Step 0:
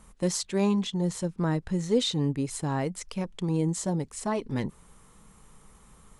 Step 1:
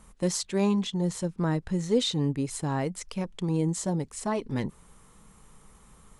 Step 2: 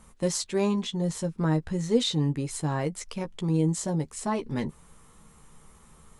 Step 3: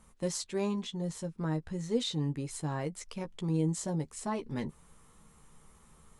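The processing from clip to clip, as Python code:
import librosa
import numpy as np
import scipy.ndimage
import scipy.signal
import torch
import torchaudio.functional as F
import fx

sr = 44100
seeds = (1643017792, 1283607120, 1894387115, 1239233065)

y1 = x
y2 = fx.doubler(y1, sr, ms=13.0, db=-7.5)
y3 = fx.rider(y2, sr, range_db=10, speed_s=2.0)
y3 = y3 * 10.0 ** (-7.0 / 20.0)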